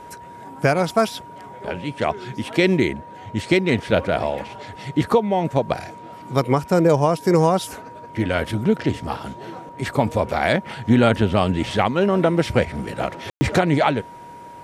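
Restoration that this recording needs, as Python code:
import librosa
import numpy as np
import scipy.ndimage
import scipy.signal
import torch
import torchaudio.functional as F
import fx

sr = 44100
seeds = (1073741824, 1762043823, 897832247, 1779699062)

y = fx.notch(x, sr, hz=950.0, q=30.0)
y = fx.fix_ambience(y, sr, seeds[0], print_start_s=14.08, print_end_s=14.58, start_s=13.3, end_s=13.41)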